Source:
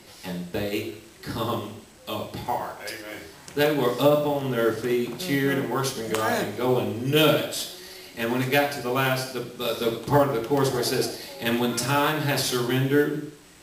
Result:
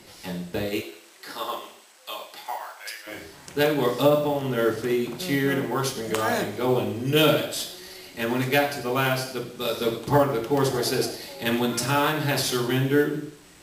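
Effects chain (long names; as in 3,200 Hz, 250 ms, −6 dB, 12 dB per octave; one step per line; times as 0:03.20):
0:00.80–0:03.06: high-pass filter 460 Hz → 1,200 Hz 12 dB per octave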